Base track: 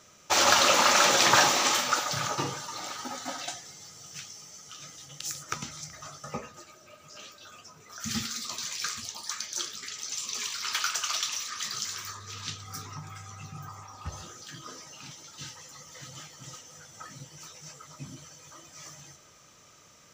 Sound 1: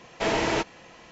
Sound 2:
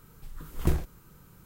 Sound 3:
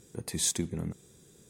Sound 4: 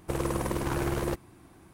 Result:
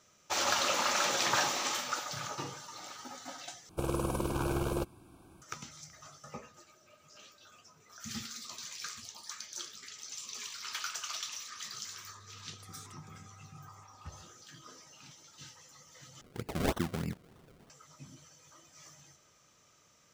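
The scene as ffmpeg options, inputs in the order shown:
ffmpeg -i bed.wav -i cue0.wav -i cue1.wav -i cue2.wav -i cue3.wav -filter_complex "[3:a]asplit=2[link_01][link_02];[0:a]volume=-9dB[link_03];[4:a]asuperstop=centerf=1900:order=8:qfactor=3.2[link_04];[link_01]acompressor=threshold=-32dB:ratio=6:attack=3.2:release=140:knee=1:detection=peak[link_05];[link_02]acrusher=samples=35:mix=1:aa=0.000001:lfo=1:lforange=35:lforate=3.2[link_06];[link_03]asplit=3[link_07][link_08][link_09];[link_07]atrim=end=3.694[link_10];[link_04]atrim=end=1.73,asetpts=PTS-STARTPTS,volume=-3dB[link_11];[link_08]atrim=start=5.416:end=16.214[link_12];[link_06]atrim=end=1.49,asetpts=PTS-STARTPTS,volume=-1.5dB[link_13];[link_09]atrim=start=17.696[link_14];[link_05]atrim=end=1.49,asetpts=PTS-STARTPTS,volume=-17.5dB,afade=type=in:duration=0.004:curve=hsin,afade=type=out:start_time=1.486:duration=0.004:curve=hsin,adelay=12350[link_15];[link_10][link_11]acrossfade=duration=0.004:curve1=hsin:curve2=hsin[link_16];[link_16][link_12]acrossfade=duration=0.004:curve1=hsin:curve2=hsin[link_17];[link_17][link_13]acrossfade=duration=0.004:curve1=hsin:curve2=hsin[link_18];[link_18][link_14]acrossfade=duration=0.004:curve1=hsin:curve2=hsin[link_19];[link_19][link_15]amix=inputs=2:normalize=0" out.wav

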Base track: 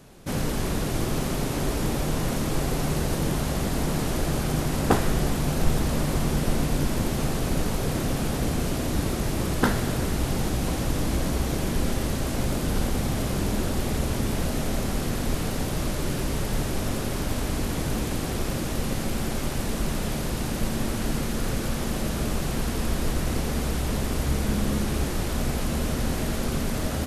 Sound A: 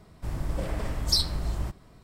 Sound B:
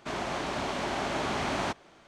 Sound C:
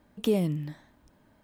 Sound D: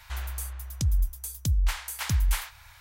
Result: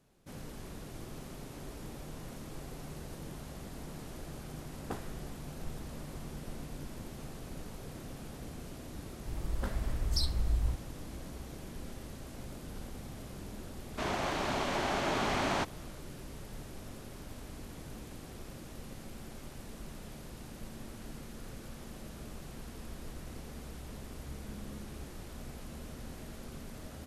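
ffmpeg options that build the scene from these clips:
ffmpeg -i bed.wav -i cue0.wav -i cue1.wav -filter_complex "[0:a]volume=-19dB[link_01];[1:a]asubboost=boost=7:cutoff=130,atrim=end=2.03,asetpts=PTS-STARTPTS,volume=-10.5dB,afade=type=in:duration=0.004:curve=hsin,afade=type=out:start_time=2.026:duration=0.004:curve=hsin,adelay=9040[link_02];[2:a]atrim=end=2.07,asetpts=PTS-STARTPTS,volume=-1dB,afade=type=in:duration=0.004:curve=hsin,afade=type=out:start_time=2.066:duration=0.004:curve=hsin,adelay=13920[link_03];[link_01][link_02][link_03]amix=inputs=3:normalize=0" out.wav

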